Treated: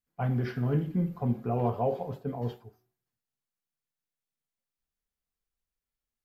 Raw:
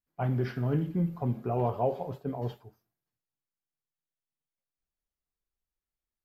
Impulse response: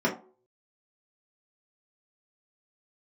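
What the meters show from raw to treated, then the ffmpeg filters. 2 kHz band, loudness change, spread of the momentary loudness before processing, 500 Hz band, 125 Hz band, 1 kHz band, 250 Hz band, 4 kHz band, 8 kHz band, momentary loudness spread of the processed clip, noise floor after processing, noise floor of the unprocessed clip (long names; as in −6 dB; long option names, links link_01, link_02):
+1.0 dB, +0.5 dB, 7 LU, −0.5 dB, +0.5 dB, 0.0 dB, +1.0 dB, 0.0 dB, can't be measured, 8 LU, below −85 dBFS, below −85 dBFS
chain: -filter_complex "[0:a]asplit=2[link_01][link_02];[1:a]atrim=start_sample=2205,lowpass=frequency=2100:width=0.5412,lowpass=frequency=2100:width=1.3066[link_03];[link_02][link_03]afir=irnorm=-1:irlink=0,volume=-23.5dB[link_04];[link_01][link_04]amix=inputs=2:normalize=0"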